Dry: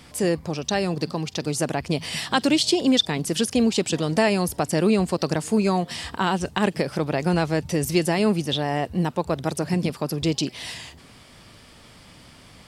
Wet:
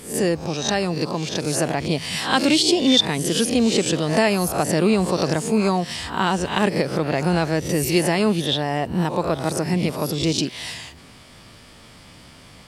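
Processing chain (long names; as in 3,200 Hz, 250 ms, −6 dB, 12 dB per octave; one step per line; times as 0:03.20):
peak hold with a rise ahead of every peak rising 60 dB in 0.44 s
level +1 dB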